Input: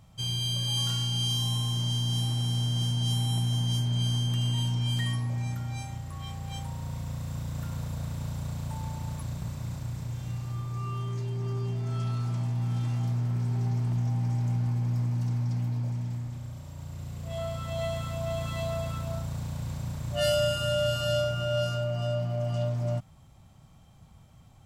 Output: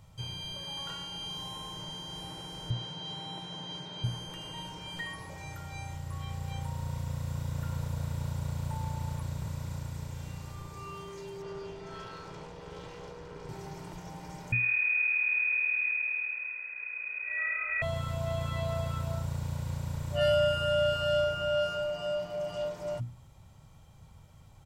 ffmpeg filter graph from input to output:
-filter_complex "[0:a]asettb=1/sr,asplit=3[a][b][c];[a]atrim=end=2.704[d];[b]atrim=start=2.7:end=4.04,asetpts=PTS-STARTPTS,afade=t=in:d=0.004:c=qsin,afade=t=out:st=1.336:d=0.004:c=qsin,highpass=120,lowpass=5.8k,equalizer=f=3.7k:w=6.1:g=12[e];[c]atrim=start=4.036[f];[d][e]acrossfade=d=0.004:c1=hsin:c2=qsin[g];[g][f]acrossfade=d=0.004:c1=qsin:c2=hsin,asettb=1/sr,asplit=3[h][i][j];[h]atrim=end=11.424[k];[i]atrim=start=11.42:end=13.49,asetpts=PTS-STARTPTS,afade=t=in:d=0.004:c=qsin,afade=t=out:st=2.066:d=0.004:c=qsin,lowpass=5.6k,asoftclip=type=hard:threshold=-27.5dB[l];[j]atrim=start=13.486[m];[k][l]acrossfade=d=0.004:c1=hsin:c2=qsin[n];[n][m]acrossfade=d=0.004:c1=qsin:c2=hsin,asettb=1/sr,asplit=3[o][p][q];[o]atrim=end=14.524[r];[p]atrim=start=14.52:end=17.82,asetpts=PTS-STARTPTS,afade=t=in:d=0.004:c=qsin,afade=t=out:st=3.296:d=0.004:c=qsin,asplit=8[s][t][u][v][w][x][y][z];[t]adelay=94,afreqshift=-38,volume=-6dB[aa];[u]adelay=188,afreqshift=-76,volume=-11dB[ab];[v]adelay=282,afreqshift=-114,volume=-16.1dB[ac];[w]adelay=376,afreqshift=-152,volume=-21.1dB[ad];[x]adelay=470,afreqshift=-190,volume=-26.1dB[ae];[y]adelay=564,afreqshift=-228,volume=-31.2dB[af];[z]adelay=658,afreqshift=-266,volume=-36.2dB[ag];[s][aa][ab][ac][ad][ae][af][ag]amix=inputs=8:normalize=0,atrim=end_sample=145530,lowpass=f=2.2k:t=q:w=0.5098,lowpass=f=2.2k:t=q:w=0.6013,lowpass=f=2.2k:t=q:w=0.9,lowpass=f=2.2k:t=q:w=2.563,afreqshift=-2600[ah];[q]atrim=start=17.816[ai];[r][ah]acrossfade=d=0.004:c1=hsin:c2=qsin[aj];[aj][ai]acrossfade=d=0.004:c1=qsin:c2=hsin,bandreject=f=60:t=h:w=6,bandreject=f=120:t=h:w=6,bandreject=f=180:t=h:w=6,bandreject=f=240:t=h:w=6,bandreject=f=300:t=h:w=6,bandreject=f=360:t=h:w=6,acrossover=split=2800[ak][al];[al]acompressor=threshold=-50dB:ratio=4:attack=1:release=60[am];[ak][am]amix=inputs=2:normalize=0,aecho=1:1:2.1:0.34"

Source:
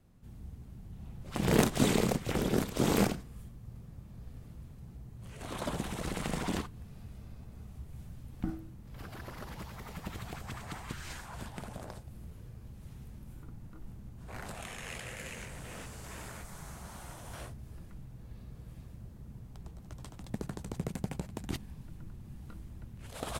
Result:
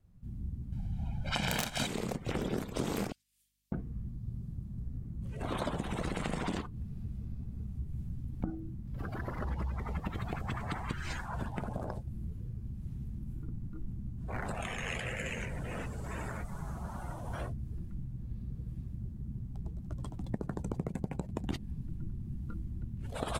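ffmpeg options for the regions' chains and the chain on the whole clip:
-filter_complex "[0:a]asettb=1/sr,asplit=3[a][b][c];[a]atrim=end=0.724[d];[b]atrim=start=0.72:end=1.87,asetpts=PTS-STARTPTS,afade=t=in:d=0.004:c=qsin,afade=t=out:st=1.146:d=0.004:c=qsin,equalizer=f=2.7k:w=0.34:g=12,aecho=1:1:1.3:0.72,atrim=end_sample=50715,aeval=exprs='(mod(2.37*val(0)+1,2)-1)/2.37':c=same[e];[c]atrim=start=1.866[f];[d][e]acrossfade=d=0.004:c1=hsin:c2=qsin[g];[g][f]acrossfade=d=0.004:c1=qsin:c2=hsin,asettb=1/sr,asplit=3[h][i][j];[h]atrim=end=3.124[k];[i]atrim=start=3.12:end=5.22,asetpts=PTS-STARTPTS,afade=t=in:d=0.004:c=qsin,afade=t=out:st=2.096:d=0.004:c=qsin,acrossover=split=2600[l][m];[l]adelay=600[n];[n][m]amix=inputs=2:normalize=0,atrim=end_sample=92610,aeval=exprs='val(0)+0.000158*(sin(2*PI*50*n/s)+sin(2*PI*2*50*n/s)/2+sin(2*PI*3*50*n/s)/3+sin(2*PI*4*50*n/s)/4+sin(2*PI*5*50*n/s)/5)':c=same[o];[j]atrim=start=5.216[p];[k][o]acrossfade=d=0.004:c1=hsin:c2=qsin[q];[q][p]acrossfade=d=0.004:c1=qsin:c2=hsin,asettb=1/sr,asplit=3[r][s][t];[r]atrim=end=9.384[u];[s]atrim=start=9.38:end=10,asetpts=PTS-STARTPTS,afade=t=in:d=0.004:c=qsin,afade=t=out:st=0.616:d=0.004:c=qsin,lowpass=12k,equalizer=f=67:w=4.3:g=12.5[v];[t]atrim=start=9.996[w];[u][v]acrossfade=d=0.004:c1=hsin:c2=qsin[x];[x][w]acrossfade=d=0.004:c1=qsin:c2=hsin,afftdn=nr=16:nf=-48,acompressor=threshold=-38dB:ratio=10,volume=7.5dB"

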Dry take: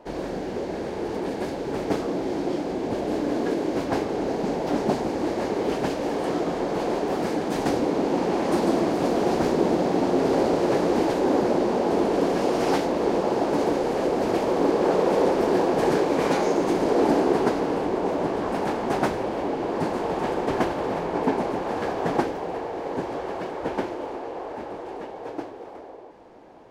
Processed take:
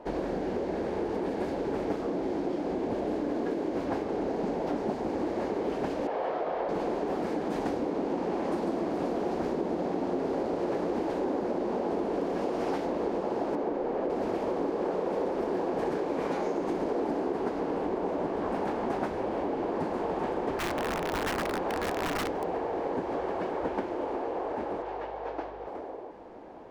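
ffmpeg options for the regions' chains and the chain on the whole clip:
-filter_complex "[0:a]asettb=1/sr,asplit=3[a][b][c];[a]atrim=end=6.074[d];[b]atrim=start=6.07:end=6.69,asetpts=PTS-STARTPTS,afade=t=in:d=0.004:c=qsin,afade=t=out:st=0.616:d=0.004:c=qsin,lowpass=3.3k,lowshelf=f=400:t=q:w=1.5:g=-10.5[e];[c]atrim=start=6.686[f];[d][e]acrossfade=d=0.004:c1=hsin:c2=qsin[g];[g][f]acrossfade=d=0.004:c1=qsin:c2=hsin,asettb=1/sr,asplit=3[h][i][j];[h]atrim=end=13.554[k];[i]atrim=start=13.55:end=14.1,asetpts=PTS-STARTPTS,afade=t=in:d=0.004:c=qsin,afade=t=out:st=0.546:d=0.004:c=qsin,lowpass=f=1.6k:p=1,equalizer=f=83:t=o:w=1.8:g=-8[l];[j]atrim=start=14.096[m];[k][l]acrossfade=d=0.004:c1=hsin:c2=qsin[n];[n][m]acrossfade=d=0.004:c1=qsin:c2=hsin,asettb=1/sr,asplit=3[o][p][q];[o]atrim=end=20.584[r];[p]atrim=start=20.58:end=22.44,asetpts=PTS-STARTPTS,afade=t=in:d=0.004:c=qsin,afade=t=out:st=1.856:d=0.004:c=qsin,bandreject=f=50:t=h:w=6,bandreject=f=100:t=h:w=6,bandreject=f=150:t=h:w=6,bandreject=f=200:t=h:w=6,aeval=exprs='(mod(9.44*val(0)+1,2)-1)/9.44':c=same[s];[q]atrim=start=22.436[t];[r][s]acrossfade=d=0.004:c1=hsin:c2=qsin[u];[u][t]acrossfade=d=0.004:c1=qsin:c2=hsin,asettb=1/sr,asplit=3[v][w][x];[v]atrim=end=24.824[y];[w]atrim=start=24.82:end=25.67,asetpts=PTS-STARTPTS,afade=t=in:d=0.004:c=qsin,afade=t=out:st=0.846:d=0.004:c=qsin,highpass=510,lowpass=5.2k,aeval=exprs='val(0)+0.002*(sin(2*PI*50*n/s)+sin(2*PI*2*50*n/s)/2+sin(2*PI*3*50*n/s)/3+sin(2*PI*4*50*n/s)/4+sin(2*PI*5*50*n/s)/5)':c=same[z];[x]atrim=start=25.666[aa];[y][z]acrossfade=d=0.004:c1=hsin:c2=qsin[ab];[ab][aa]acrossfade=d=0.004:c1=qsin:c2=hsin,highshelf=f=3k:g=-9.5,acompressor=threshold=-30dB:ratio=6,equalizer=f=130:t=o:w=0.45:g=-6.5,volume=2.5dB"

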